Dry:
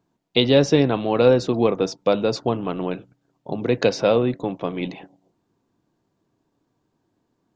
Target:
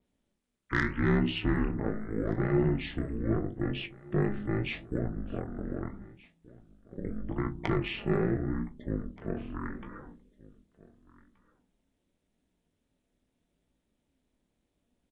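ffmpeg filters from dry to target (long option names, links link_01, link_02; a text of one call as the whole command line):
ffmpeg -i in.wav -filter_complex "[0:a]crystalizer=i=1:c=0,asplit=2[link_01][link_02];[link_02]acompressor=threshold=-31dB:ratio=6,volume=-2.5dB[link_03];[link_01][link_03]amix=inputs=2:normalize=0,bandreject=frequency=60:width_type=h:width=6,bandreject=frequency=120:width_type=h:width=6,bandreject=frequency=180:width_type=h:width=6,bandreject=frequency=240:width_type=h:width=6,bandreject=frequency=300:width_type=h:width=6,bandreject=frequency=360:width_type=h:width=6,bandreject=frequency=420:width_type=h:width=6,bandreject=frequency=480:width_type=h:width=6,aeval=exprs='val(0)*sin(2*PI*210*n/s)':channel_layout=same,asoftclip=type=tanh:threshold=-6dB,flanger=delay=8:depth=6.9:regen=41:speed=1.6:shape=sinusoidal,aecho=1:1:763:0.075,asetrate=22050,aresample=44100,adynamicequalizer=threshold=0.00355:dfrequency=5000:dqfactor=0.7:tfrequency=5000:tqfactor=0.7:attack=5:release=100:ratio=0.375:range=4:mode=boostabove:tftype=highshelf,volume=-4dB" out.wav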